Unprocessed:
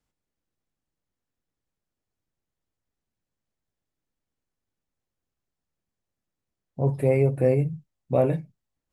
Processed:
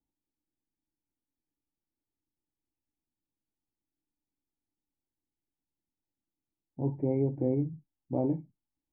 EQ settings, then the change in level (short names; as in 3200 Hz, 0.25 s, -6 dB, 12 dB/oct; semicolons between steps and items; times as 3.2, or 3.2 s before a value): vocal tract filter u; low shelf 130 Hz +8 dB; bell 2100 Hz +13 dB 2.8 oct; 0.0 dB